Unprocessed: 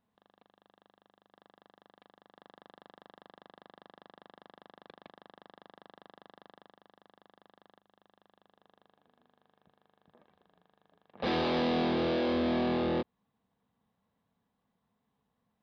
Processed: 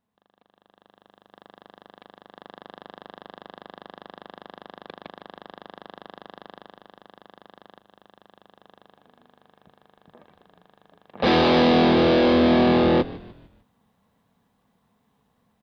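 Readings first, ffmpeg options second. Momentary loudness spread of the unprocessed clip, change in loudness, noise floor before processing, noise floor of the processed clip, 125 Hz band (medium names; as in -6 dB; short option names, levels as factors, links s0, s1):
6 LU, +12.0 dB, -81 dBFS, -69 dBFS, +12.5 dB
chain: -filter_complex "[0:a]asplit=5[s0][s1][s2][s3][s4];[s1]adelay=150,afreqshift=-70,volume=0.126[s5];[s2]adelay=300,afreqshift=-140,volume=0.0556[s6];[s3]adelay=450,afreqshift=-210,volume=0.0243[s7];[s4]adelay=600,afreqshift=-280,volume=0.0107[s8];[s0][s5][s6][s7][s8]amix=inputs=5:normalize=0,dynaudnorm=f=360:g=5:m=3.98"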